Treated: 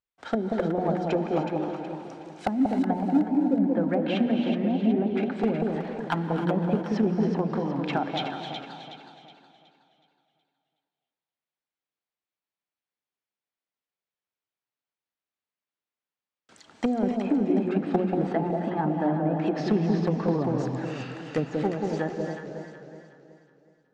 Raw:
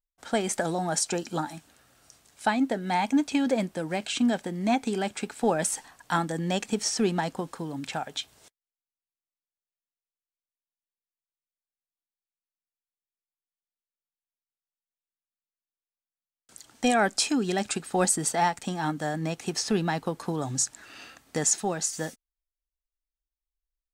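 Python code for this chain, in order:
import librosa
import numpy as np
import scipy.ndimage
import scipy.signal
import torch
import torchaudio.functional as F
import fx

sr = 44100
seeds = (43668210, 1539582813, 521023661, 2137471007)

y = scipy.signal.sosfilt(scipy.signal.butter(2, 3400.0, 'lowpass', fs=sr, output='sos'), x)
y = fx.hum_notches(y, sr, base_hz=60, count=4)
y = fx.env_lowpass_down(y, sr, base_hz=310.0, full_db=-23.5)
y = scipy.signal.sosfilt(scipy.signal.butter(2, 80.0, 'highpass', fs=sr, output='sos'), y)
y = fx.low_shelf(y, sr, hz=160.0, db=-2.5)
y = np.clip(y, -10.0 ** (-20.5 / 20.0), 10.0 ** (-20.5 / 20.0))
y = fx.echo_alternate(y, sr, ms=185, hz=890.0, feedback_pct=64, wet_db=-2.5)
y = fx.rev_gated(y, sr, seeds[0], gate_ms=330, shape='rising', drr_db=8.0)
y = fx.echo_warbled(y, sr, ms=266, feedback_pct=37, rate_hz=2.8, cents=195, wet_db=-12.0)
y = y * librosa.db_to_amplitude(4.5)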